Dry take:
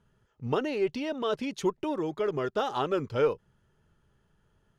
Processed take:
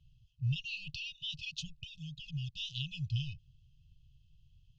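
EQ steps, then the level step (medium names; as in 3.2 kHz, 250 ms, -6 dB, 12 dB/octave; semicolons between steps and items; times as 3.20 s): brick-wall FIR band-stop 160–2500 Hz; low-pass 5.4 kHz 24 dB/octave; bass shelf 85 Hz +7 dB; +3.0 dB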